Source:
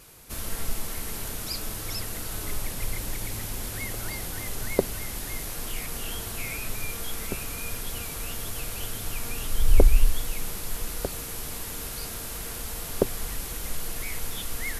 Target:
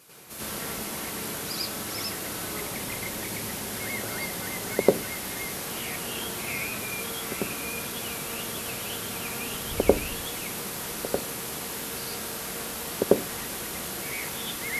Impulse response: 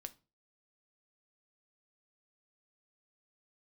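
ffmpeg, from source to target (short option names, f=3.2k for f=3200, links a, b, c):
-filter_complex "[0:a]highpass=160,asplit=2[a][b];[1:a]atrim=start_sample=2205,highshelf=f=5.8k:g=-6.5,adelay=95[c];[b][c]afir=irnorm=-1:irlink=0,volume=12.5dB[d];[a][d]amix=inputs=2:normalize=0,volume=-3.5dB"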